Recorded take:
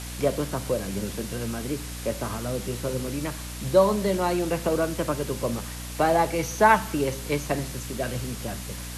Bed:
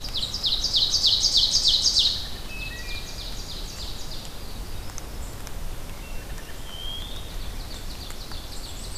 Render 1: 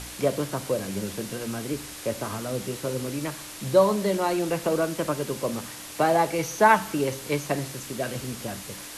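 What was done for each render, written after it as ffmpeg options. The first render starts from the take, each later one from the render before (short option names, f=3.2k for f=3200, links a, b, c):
-af "bandreject=f=60:t=h:w=4,bandreject=f=120:t=h:w=4,bandreject=f=180:t=h:w=4,bandreject=f=240:t=h:w=4"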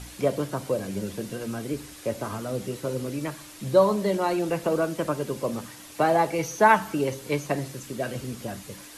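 -af "afftdn=nr=7:nf=-40"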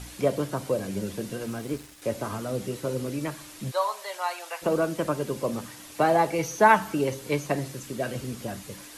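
-filter_complex "[0:a]asettb=1/sr,asplit=3[a][b][c];[a]atrim=end=1.464[d];[b]atrim=start=1.46:end=2.02,asetpts=PTS-STARTPTS,afade=t=in:d=0.004:c=qsin,afade=t=out:st=0.556:d=0.004:c=qsin,aeval=exprs='sgn(val(0))*max(abs(val(0))-0.00473,0)':c=same[e];[c]atrim=start=2.016[f];[d][e]acrossfade=d=0.004:c1=hsin:c2=qsin[g];[g][f]acrossfade=d=0.004:c1=qsin:c2=hsin,asplit=3[h][i][j];[h]afade=t=out:st=3.7:d=0.02[k];[i]highpass=f=760:w=0.5412,highpass=f=760:w=1.3066,afade=t=in:st=3.7:d=0.02,afade=t=out:st=4.61:d=0.02[l];[j]afade=t=in:st=4.61:d=0.02[m];[k][l][m]amix=inputs=3:normalize=0"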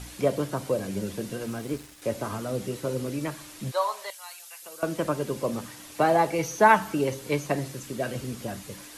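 -filter_complex "[0:a]asettb=1/sr,asplit=3[a][b][c];[a]atrim=end=4.104[d];[b]atrim=start=4.1:end=4.83,asetpts=PTS-STARTPTS,afade=t=in:d=0.004:c=qsin,afade=t=out:st=0.726:d=0.004:c=qsin,aderivative[e];[c]atrim=start=4.826[f];[d][e]acrossfade=d=0.004:c1=hsin:c2=qsin[g];[g][f]acrossfade=d=0.004:c1=qsin:c2=hsin"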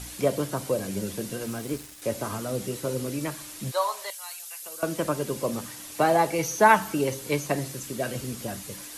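-af "highshelf=f=5.3k:g=7.5"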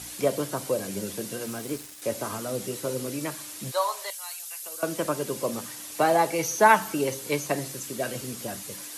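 -af "highpass=84,bass=f=250:g=-4,treble=f=4k:g=2"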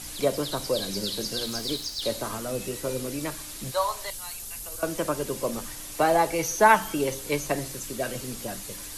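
-filter_complex "[1:a]volume=-13.5dB[a];[0:a][a]amix=inputs=2:normalize=0"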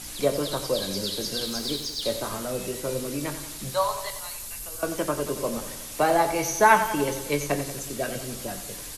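-filter_complex "[0:a]asplit=2[a][b];[b]adelay=21,volume=-11dB[c];[a][c]amix=inputs=2:normalize=0,aecho=1:1:91|182|273|364|455|546|637:0.282|0.163|0.0948|0.055|0.0319|0.0185|0.0107"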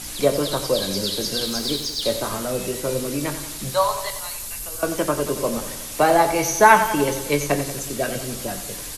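-af "volume=5dB,alimiter=limit=-1dB:level=0:latency=1"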